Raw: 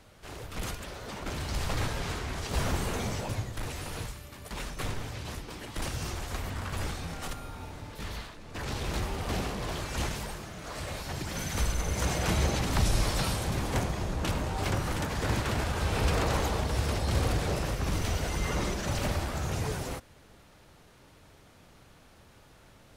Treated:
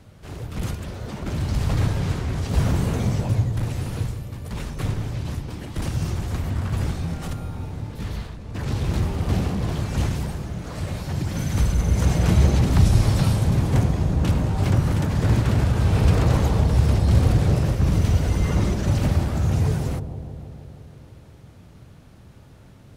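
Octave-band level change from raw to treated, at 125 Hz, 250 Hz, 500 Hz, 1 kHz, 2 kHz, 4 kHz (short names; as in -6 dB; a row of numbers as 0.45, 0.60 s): +13.0, +10.5, +4.5, +2.0, +0.5, 0.0 dB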